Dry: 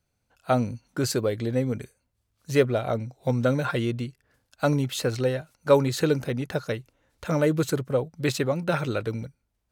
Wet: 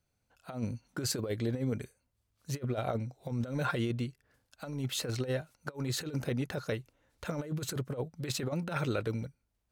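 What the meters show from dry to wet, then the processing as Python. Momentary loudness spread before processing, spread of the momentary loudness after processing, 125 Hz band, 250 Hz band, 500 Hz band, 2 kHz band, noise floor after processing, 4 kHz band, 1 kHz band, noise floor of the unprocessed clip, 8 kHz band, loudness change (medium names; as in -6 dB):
11 LU, 9 LU, -7.0 dB, -8.5 dB, -13.0 dB, -8.5 dB, -80 dBFS, -5.0 dB, -10.5 dB, -76 dBFS, -4.0 dB, -9.5 dB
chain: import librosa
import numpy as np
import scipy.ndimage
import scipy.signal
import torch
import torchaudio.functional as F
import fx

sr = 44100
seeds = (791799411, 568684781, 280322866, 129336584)

y = fx.over_compress(x, sr, threshold_db=-26.0, ratio=-0.5)
y = y * 10.0 ** (-6.5 / 20.0)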